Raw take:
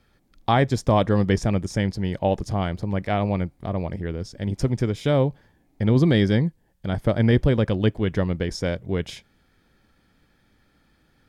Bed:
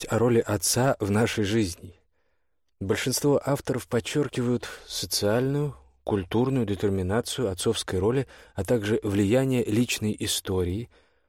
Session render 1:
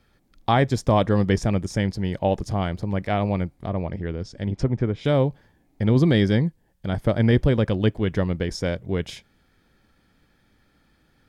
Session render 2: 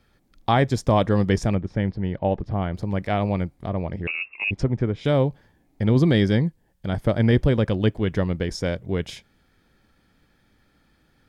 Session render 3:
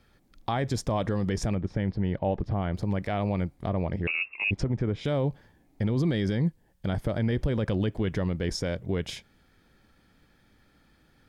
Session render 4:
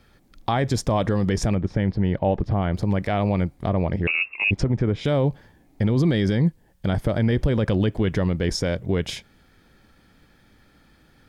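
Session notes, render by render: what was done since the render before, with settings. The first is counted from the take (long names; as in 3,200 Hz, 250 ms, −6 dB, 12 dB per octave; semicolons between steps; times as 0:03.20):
0:03.54–0:05.05: treble cut that deepens with the level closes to 1,900 Hz, closed at −19 dBFS
0:01.55–0:02.74: high-frequency loss of the air 380 metres; 0:04.07–0:04.51: voice inversion scrambler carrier 2,700 Hz
brickwall limiter −17.5 dBFS, peak gain reduction 10 dB
level +6 dB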